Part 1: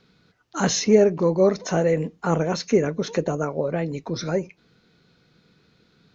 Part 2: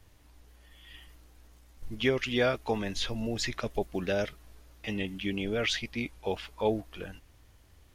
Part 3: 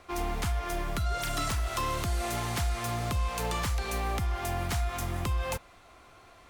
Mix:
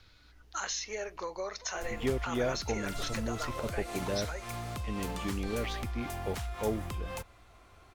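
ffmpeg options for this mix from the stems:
-filter_complex "[0:a]highpass=1.2k,volume=2dB[a];[1:a]tiltshelf=f=970:g=5,volume=-7.5dB[b];[2:a]adelay=1650,volume=-5dB[c];[a][c]amix=inputs=2:normalize=0,acompressor=threshold=-34dB:ratio=6,volume=0dB[d];[b][d]amix=inputs=2:normalize=0"

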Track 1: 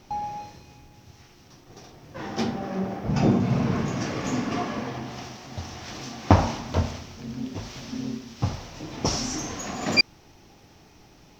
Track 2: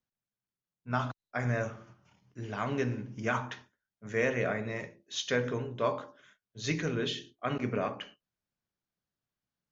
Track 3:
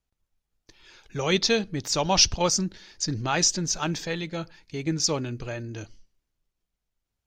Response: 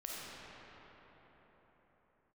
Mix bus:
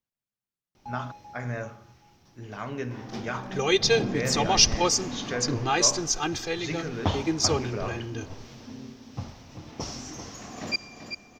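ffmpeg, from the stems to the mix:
-filter_complex "[0:a]adelay=750,volume=-10.5dB,asplit=3[a][b][c];[b]volume=-14.5dB[d];[c]volume=-8dB[e];[1:a]volume=-2dB[f];[2:a]aecho=1:1:2.5:0.99,adelay=2400,volume=-3dB,asplit=2[g][h];[h]volume=-18.5dB[i];[3:a]atrim=start_sample=2205[j];[d][i]amix=inputs=2:normalize=0[k];[k][j]afir=irnorm=-1:irlink=0[l];[e]aecho=0:1:388|776|1164|1552|1940|2328:1|0.43|0.185|0.0795|0.0342|0.0147[m];[a][f][g][l][m]amix=inputs=5:normalize=0"

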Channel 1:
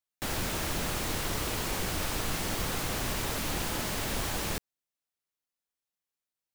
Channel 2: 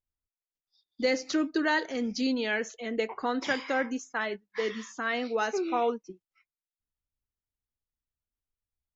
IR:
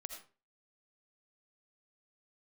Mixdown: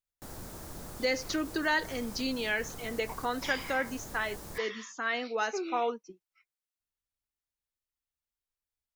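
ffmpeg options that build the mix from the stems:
-filter_complex "[0:a]equalizer=f=2.7k:t=o:w=1.4:g=-12.5,volume=-10.5dB[a];[1:a]lowshelf=f=460:g=-8,volume=0dB,asplit=2[b][c];[c]apad=whole_len=288544[d];[a][d]sidechaincompress=threshold=-33dB:ratio=8:attack=32:release=113[e];[e][b]amix=inputs=2:normalize=0"

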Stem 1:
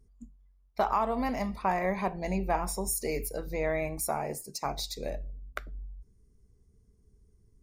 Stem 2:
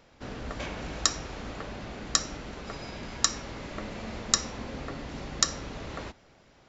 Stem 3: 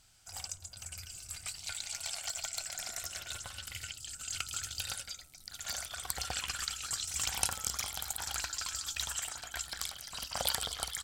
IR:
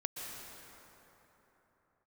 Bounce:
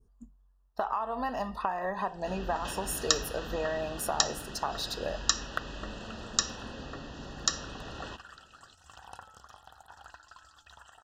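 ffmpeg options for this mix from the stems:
-filter_complex "[0:a]volume=-3.5dB[a];[1:a]dynaudnorm=f=530:g=3:m=11.5dB,adelay=2050,volume=-6.5dB[b];[2:a]lowpass=f=1.2k:p=1,adelay=1700,volume=-13.5dB[c];[a][c]amix=inputs=2:normalize=0,equalizer=f=1k:w=0.6:g=10.5,acompressor=threshold=-30dB:ratio=6,volume=0dB[d];[b][d]amix=inputs=2:normalize=0,adynamicequalizer=threshold=0.00282:dfrequency=2700:dqfactor=0.75:tfrequency=2700:tqfactor=0.75:attack=5:release=100:ratio=0.375:range=3.5:mode=boostabove:tftype=bell,asuperstop=centerf=2200:order=20:qfactor=3.7"

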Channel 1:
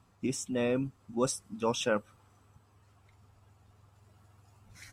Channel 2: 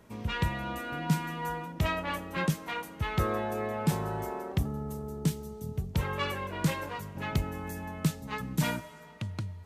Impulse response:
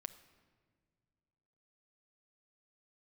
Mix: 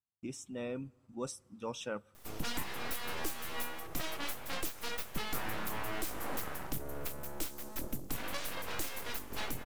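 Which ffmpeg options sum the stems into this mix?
-filter_complex "[0:a]agate=range=-30dB:threshold=-58dB:ratio=16:detection=peak,acontrast=88,volume=-18.5dB,asplit=2[a][b];[b]volume=-10.5dB[c];[1:a]aemphasis=mode=production:type=75fm,aeval=exprs='abs(val(0))':c=same,adelay=2150,volume=-0.5dB[d];[2:a]atrim=start_sample=2205[e];[c][e]afir=irnorm=-1:irlink=0[f];[a][d][f]amix=inputs=3:normalize=0,alimiter=limit=-23dB:level=0:latency=1:release=291"

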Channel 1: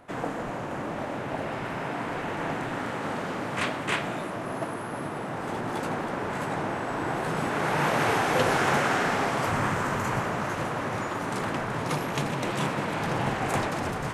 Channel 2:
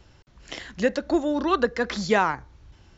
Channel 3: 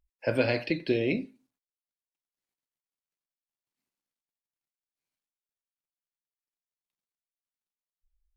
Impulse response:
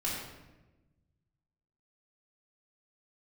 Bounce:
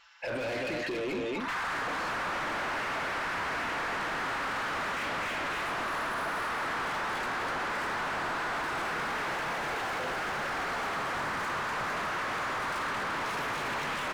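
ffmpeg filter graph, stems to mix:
-filter_complex "[0:a]adelay=1400,volume=2dB,asplit=2[a][b];[b]volume=-14.5dB[c];[1:a]aecho=1:1:5.9:0.56,alimiter=limit=-17.5dB:level=0:latency=1,volume=-17.5dB[d];[2:a]volume=-10.5dB,asplit=2[e][f];[f]volume=-6.5dB[g];[a][d]amix=inputs=2:normalize=0,highpass=f=1.1k:w=0.5412,highpass=f=1.1k:w=1.3066,acompressor=threshold=-38dB:ratio=6,volume=0dB[h];[c][g]amix=inputs=2:normalize=0,aecho=0:1:241:1[i];[e][h][i]amix=inputs=3:normalize=0,asplit=2[j][k];[k]highpass=f=720:p=1,volume=32dB,asoftclip=type=tanh:threshold=-21dB[l];[j][l]amix=inputs=2:normalize=0,lowpass=f=1.8k:p=1,volume=-6dB,alimiter=level_in=4.5dB:limit=-24dB:level=0:latency=1,volume=-4.5dB"

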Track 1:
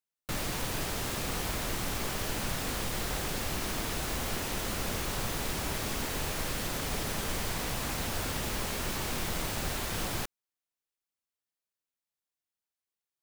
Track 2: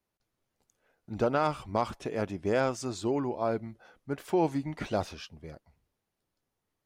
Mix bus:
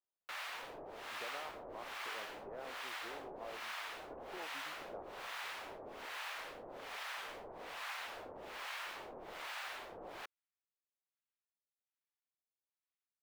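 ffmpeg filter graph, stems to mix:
-filter_complex "[0:a]lowshelf=f=230:g=-6,acrossover=split=760[a][b];[a]aeval=exprs='val(0)*(1-1/2+1/2*cos(2*PI*1.2*n/s))':c=same[c];[b]aeval=exprs='val(0)*(1-1/2-1/2*cos(2*PI*1.2*n/s))':c=same[d];[c][d]amix=inputs=2:normalize=0,volume=-2dB[e];[1:a]lowpass=1.3k,acompressor=threshold=-28dB:ratio=6,volume=-14dB[f];[e][f]amix=inputs=2:normalize=0,acrossover=split=410 3600:gain=0.0891 1 0.141[g][h][i];[g][h][i]amix=inputs=3:normalize=0"

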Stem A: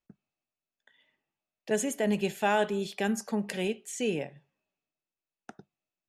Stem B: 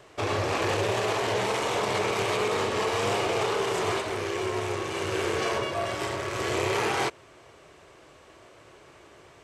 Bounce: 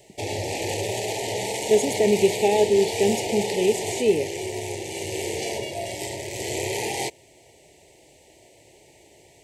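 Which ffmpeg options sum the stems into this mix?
-filter_complex "[0:a]equalizer=f=400:t=o:w=0.41:g=12.5,volume=2dB[a];[1:a]aexciter=amount=2.5:drive=7.3:freq=6.6k,volume=-1dB[b];[a][b]amix=inputs=2:normalize=0,asuperstop=centerf=1300:order=12:qfactor=1.4,equalizer=f=4.5k:t=o:w=0.39:g=5.5"

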